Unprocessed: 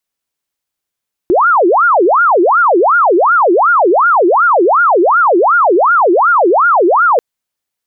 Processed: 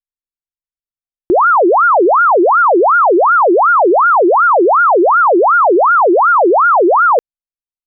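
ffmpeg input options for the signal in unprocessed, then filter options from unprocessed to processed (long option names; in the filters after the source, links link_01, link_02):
-f lavfi -i "aevalsrc='0.501*sin(2*PI*(883.5*t-546.5/(2*PI*2.7)*sin(2*PI*2.7*t)))':duration=5.89:sample_rate=44100"
-af "anlmdn=25.1"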